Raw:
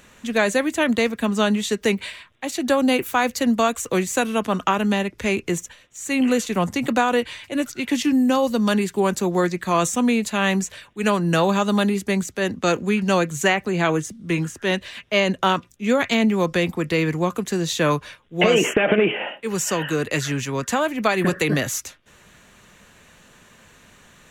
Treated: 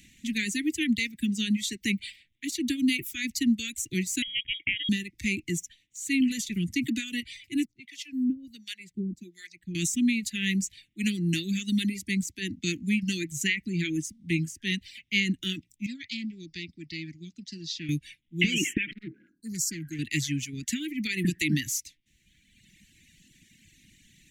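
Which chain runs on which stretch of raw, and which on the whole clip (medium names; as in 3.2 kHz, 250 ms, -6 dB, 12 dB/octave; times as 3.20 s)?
4.22–4.89 s: high-pass 540 Hz 6 dB/octave + dynamic bell 960 Hz, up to -6 dB, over -33 dBFS, Q 1.6 + frequency inversion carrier 3.5 kHz
7.65–9.75 s: treble shelf 6.3 kHz -7.5 dB + harmonic tremolo 1.4 Hz, depth 100%, crossover 650 Hz + upward expansion, over -34 dBFS
15.86–17.89 s: four-pole ladder low-pass 5.4 kHz, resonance 70% + loudspeaker Doppler distortion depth 0.15 ms
18.91–19.99 s: brick-wall FIR band-stop 1.7–4 kHz + hard clipper -13.5 dBFS + transformer saturation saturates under 920 Hz
whole clip: Chebyshev band-stop 320–2000 Hz, order 4; reverb removal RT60 1.5 s; trim -2.5 dB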